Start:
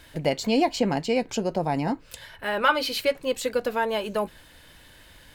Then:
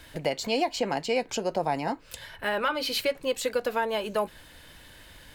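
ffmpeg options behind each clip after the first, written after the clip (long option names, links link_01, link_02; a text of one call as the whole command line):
ffmpeg -i in.wav -filter_complex "[0:a]acrossover=split=410[link_01][link_02];[link_01]acompressor=threshold=-37dB:ratio=6[link_03];[link_02]alimiter=limit=-18dB:level=0:latency=1:release=271[link_04];[link_03][link_04]amix=inputs=2:normalize=0,volume=1dB" out.wav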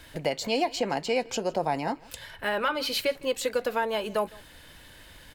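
ffmpeg -i in.wav -af "aecho=1:1:159:0.0668" out.wav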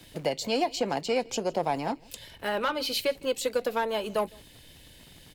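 ffmpeg -i in.wav -filter_complex "[0:a]acrossover=split=110|1900[link_01][link_02][link_03];[link_01]aeval=exprs='(mod(335*val(0)+1,2)-1)/335':channel_layout=same[link_04];[link_02]adynamicsmooth=sensitivity=2:basefreq=690[link_05];[link_04][link_05][link_03]amix=inputs=3:normalize=0" out.wav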